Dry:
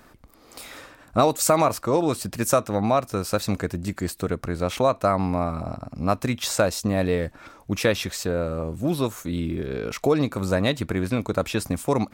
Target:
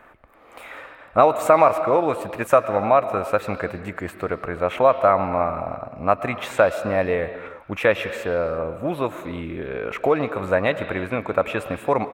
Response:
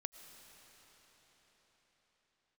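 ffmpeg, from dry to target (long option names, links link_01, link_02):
-filter_complex "[0:a]asplit=2[link_01][link_02];[link_02]firequalizer=gain_entry='entry(180,0);entry(540,14);entry(2400,14);entry(6800,-19)':delay=0.05:min_phase=1[link_03];[1:a]atrim=start_sample=2205,afade=type=out:start_time=0.4:duration=0.01,atrim=end_sample=18081,highshelf=frequency=11000:gain=5.5[link_04];[link_03][link_04]afir=irnorm=-1:irlink=0,volume=7.5dB[link_05];[link_01][link_05]amix=inputs=2:normalize=0,volume=-13.5dB"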